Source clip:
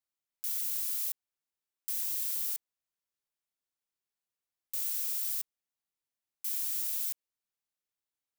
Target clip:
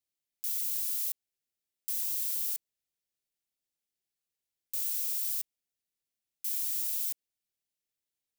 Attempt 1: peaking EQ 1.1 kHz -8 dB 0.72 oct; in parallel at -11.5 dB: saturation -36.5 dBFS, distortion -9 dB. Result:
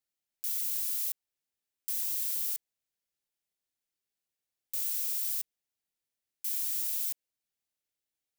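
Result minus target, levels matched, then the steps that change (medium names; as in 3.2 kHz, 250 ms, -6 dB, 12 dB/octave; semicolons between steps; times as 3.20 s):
1 kHz band +3.0 dB
change: peaking EQ 1.1 kHz -18 dB 0.72 oct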